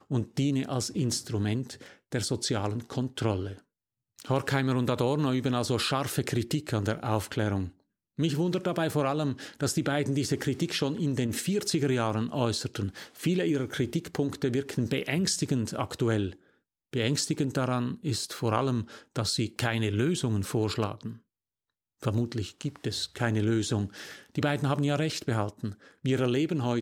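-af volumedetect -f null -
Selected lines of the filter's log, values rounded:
mean_volume: -29.4 dB
max_volume: -11.5 dB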